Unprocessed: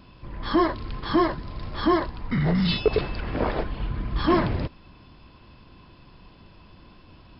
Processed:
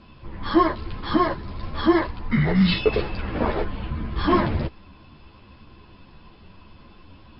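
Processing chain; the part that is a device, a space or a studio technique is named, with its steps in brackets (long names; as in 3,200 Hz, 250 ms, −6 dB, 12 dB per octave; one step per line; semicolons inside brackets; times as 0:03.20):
0:01.95–0:02.95: dynamic equaliser 2,100 Hz, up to +5 dB, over −44 dBFS, Q 2
string-machine ensemble chorus (string-ensemble chorus; low-pass filter 5,000 Hz 12 dB per octave)
level +5 dB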